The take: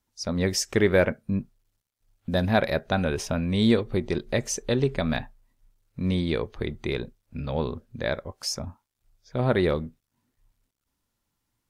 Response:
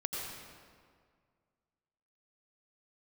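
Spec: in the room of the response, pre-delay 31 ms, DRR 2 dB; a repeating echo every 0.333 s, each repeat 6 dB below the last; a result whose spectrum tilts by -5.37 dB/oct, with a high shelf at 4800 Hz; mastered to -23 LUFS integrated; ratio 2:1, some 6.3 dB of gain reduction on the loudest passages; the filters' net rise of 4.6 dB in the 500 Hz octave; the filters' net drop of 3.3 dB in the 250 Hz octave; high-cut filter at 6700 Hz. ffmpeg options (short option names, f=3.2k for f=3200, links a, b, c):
-filter_complex "[0:a]lowpass=6.7k,equalizer=f=250:t=o:g=-7,equalizer=f=500:t=o:g=7.5,highshelf=f=4.8k:g=-3,acompressor=threshold=-23dB:ratio=2,aecho=1:1:333|666|999|1332|1665|1998:0.501|0.251|0.125|0.0626|0.0313|0.0157,asplit=2[a][b];[1:a]atrim=start_sample=2205,adelay=31[c];[b][c]afir=irnorm=-1:irlink=0,volume=-5dB[d];[a][d]amix=inputs=2:normalize=0,volume=2.5dB"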